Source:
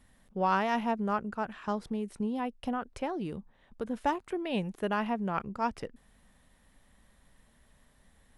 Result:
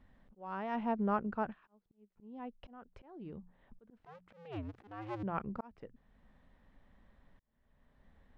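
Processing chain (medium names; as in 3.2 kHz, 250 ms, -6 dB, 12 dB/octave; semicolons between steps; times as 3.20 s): 3.99–5.23 s: cycle switcher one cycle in 2, inverted; treble shelf 6.9 kHz -10.5 dB; hum notches 60/120/180 Hz; slow attack 714 ms; tape spacing loss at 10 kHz 24 dB; 1.50–2.17 s: upward expansion 2.5:1, over -56 dBFS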